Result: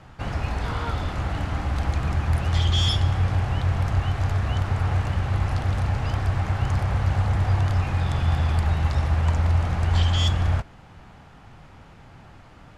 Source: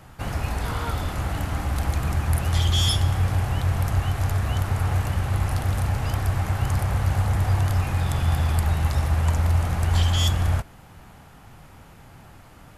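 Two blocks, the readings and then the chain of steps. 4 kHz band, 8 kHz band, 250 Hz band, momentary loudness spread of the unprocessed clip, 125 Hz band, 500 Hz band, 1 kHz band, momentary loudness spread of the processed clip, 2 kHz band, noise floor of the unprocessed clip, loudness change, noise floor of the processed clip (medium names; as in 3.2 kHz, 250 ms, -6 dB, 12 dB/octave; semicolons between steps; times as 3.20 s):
-1.0 dB, -8.0 dB, 0.0 dB, 7 LU, 0.0 dB, 0.0 dB, 0.0 dB, 7 LU, 0.0 dB, -48 dBFS, 0.0 dB, -48 dBFS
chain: low-pass 5.2 kHz 12 dB/octave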